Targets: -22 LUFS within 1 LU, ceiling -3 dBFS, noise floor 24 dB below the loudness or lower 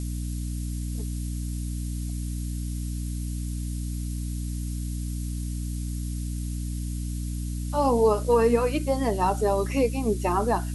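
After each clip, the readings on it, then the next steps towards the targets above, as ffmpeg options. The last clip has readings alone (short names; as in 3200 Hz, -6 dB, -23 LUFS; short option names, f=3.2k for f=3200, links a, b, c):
hum 60 Hz; harmonics up to 300 Hz; hum level -28 dBFS; noise floor -31 dBFS; noise floor target -52 dBFS; loudness -28.0 LUFS; peak -9.5 dBFS; loudness target -22.0 LUFS
-> -af "bandreject=f=60:t=h:w=6,bandreject=f=120:t=h:w=6,bandreject=f=180:t=h:w=6,bandreject=f=240:t=h:w=6,bandreject=f=300:t=h:w=6"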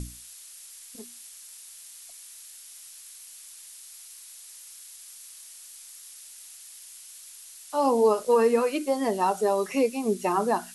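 hum none; noise floor -47 dBFS; noise floor target -49 dBFS
-> -af "afftdn=nr=6:nf=-47"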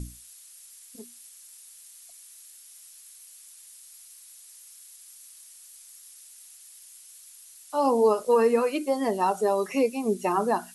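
noise floor -50 dBFS; loudness -24.5 LUFS; peak -10.5 dBFS; loudness target -22.0 LUFS
-> -af "volume=2.5dB"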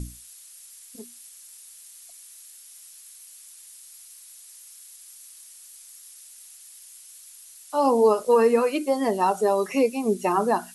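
loudness -22.0 LUFS; peak -8.0 dBFS; noise floor -48 dBFS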